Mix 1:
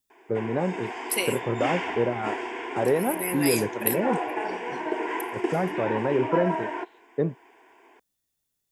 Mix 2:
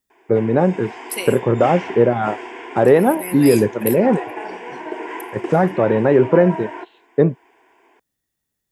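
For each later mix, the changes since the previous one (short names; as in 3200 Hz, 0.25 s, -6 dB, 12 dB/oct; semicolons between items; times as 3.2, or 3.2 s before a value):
first voice +11.0 dB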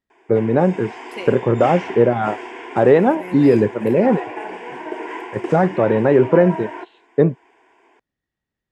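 second voice: add tape spacing loss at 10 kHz 26 dB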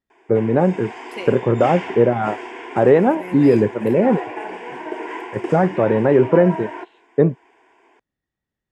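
first voice: add air absorption 220 m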